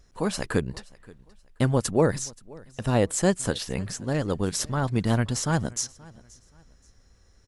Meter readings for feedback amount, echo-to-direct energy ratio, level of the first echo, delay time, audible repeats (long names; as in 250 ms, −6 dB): 31%, −23.0 dB, −23.5 dB, 527 ms, 2